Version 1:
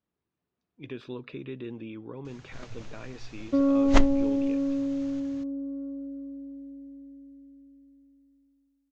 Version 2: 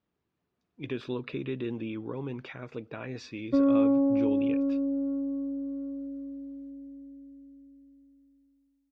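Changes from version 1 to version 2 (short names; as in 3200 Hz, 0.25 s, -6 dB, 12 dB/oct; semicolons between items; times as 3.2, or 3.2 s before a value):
speech +4.5 dB; first sound: muted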